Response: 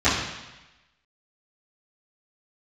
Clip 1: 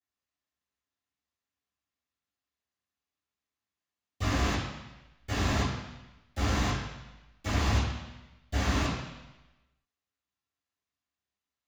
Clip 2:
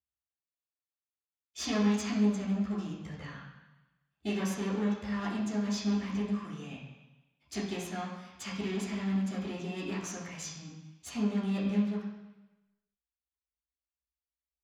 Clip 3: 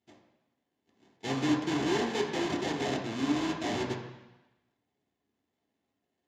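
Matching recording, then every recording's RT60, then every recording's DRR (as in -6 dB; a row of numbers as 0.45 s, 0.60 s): 1; 1.0 s, 1.0 s, 1.0 s; -19.5 dB, -10.5 dB, -1.5 dB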